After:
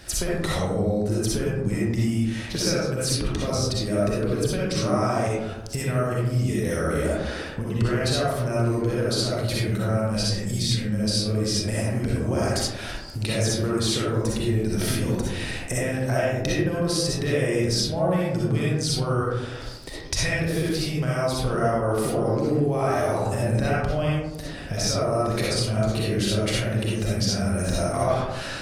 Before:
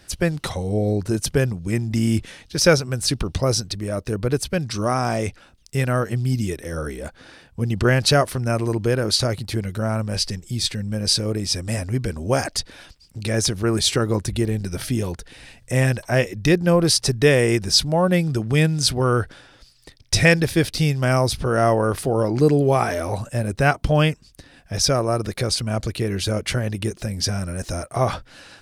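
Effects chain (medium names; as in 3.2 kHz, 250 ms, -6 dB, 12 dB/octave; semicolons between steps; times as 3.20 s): compression 16:1, threshold -32 dBFS, peak gain reduction 23.5 dB; algorithmic reverb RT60 1.1 s, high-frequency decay 0.3×, pre-delay 20 ms, DRR -6.5 dB; trim +5 dB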